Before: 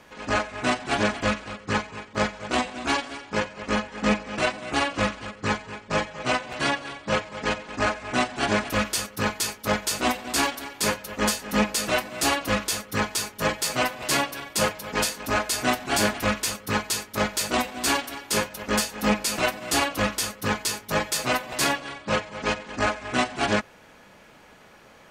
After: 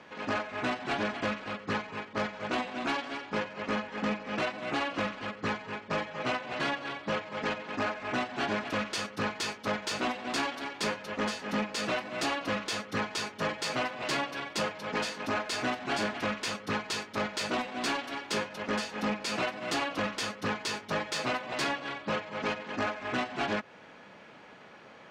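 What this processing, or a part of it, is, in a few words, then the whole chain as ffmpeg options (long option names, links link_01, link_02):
AM radio: -af "highpass=130,lowpass=4100,acompressor=threshold=-26dB:ratio=6,asoftclip=type=tanh:threshold=-22dB"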